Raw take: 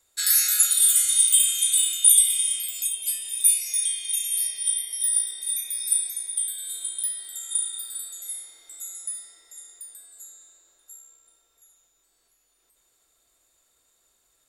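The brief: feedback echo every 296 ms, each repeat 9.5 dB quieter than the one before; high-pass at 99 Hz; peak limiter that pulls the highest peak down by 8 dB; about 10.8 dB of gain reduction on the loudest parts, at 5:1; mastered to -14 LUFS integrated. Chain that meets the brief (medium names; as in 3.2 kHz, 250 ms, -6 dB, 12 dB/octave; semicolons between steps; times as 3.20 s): high-pass 99 Hz; compression 5:1, threshold -24 dBFS; peak limiter -19 dBFS; feedback delay 296 ms, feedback 33%, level -9.5 dB; trim +13 dB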